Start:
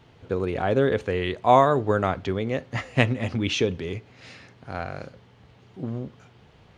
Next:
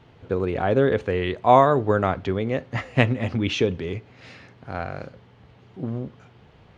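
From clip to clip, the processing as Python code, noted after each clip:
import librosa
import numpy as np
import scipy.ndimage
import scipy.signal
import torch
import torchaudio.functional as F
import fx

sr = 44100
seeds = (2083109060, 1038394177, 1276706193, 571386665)

y = fx.high_shelf(x, sr, hz=5400.0, db=-10.5)
y = F.gain(torch.from_numpy(y), 2.0).numpy()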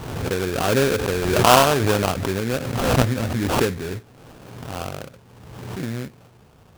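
y = fx.sample_hold(x, sr, seeds[0], rate_hz=2000.0, jitter_pct=20)
y = fx.pre_swell(y, sr, db_per_s=41.0)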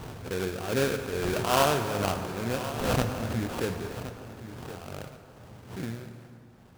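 y = x * (1.0 - 0.68 / 2.0 + 0.68 / 2.0 * np.cos(2.0 * np.pi * 2.4 * (np.arange(len(x)) / sr)))
y = fx.echo_feedback(y, sr, ms=1069, feedback_pct=23, wet_db=-13.5)
y = fx.rev_plate(y, sr, seeds[1], rt60_s=2.9, hf_ratio=0.6, predelay_ms=0, drr_db=7.0)
y = F.gain(torch.from_numpy(y), -6.5).numpy()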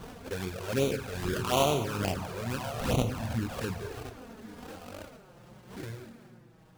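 y = fx.env_flanger(x, sr, rest_ms=7.1, full_db=-22.0)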